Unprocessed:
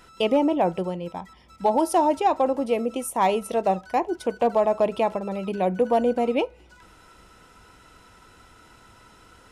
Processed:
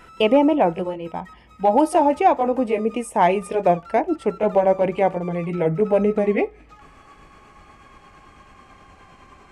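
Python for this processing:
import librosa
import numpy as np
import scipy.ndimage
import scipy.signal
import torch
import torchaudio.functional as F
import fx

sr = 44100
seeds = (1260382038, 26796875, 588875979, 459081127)

y = fx.pitch_glide(x, sr, semitones=-4.0, runs='starting unshifted')
y = fx.high_shelf_res(y, sr, hz=3200.0, db=-6.0, q=1.5)
y = y * 10.0 ** (5.0 / 20.0)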